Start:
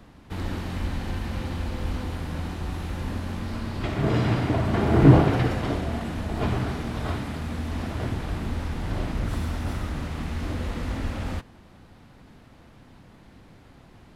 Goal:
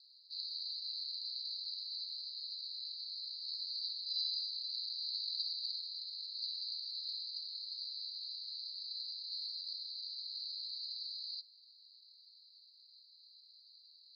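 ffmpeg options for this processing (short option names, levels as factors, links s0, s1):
-af "asuperpass=centerf=4400:order=12:qfactor=4.8,volume=4.47"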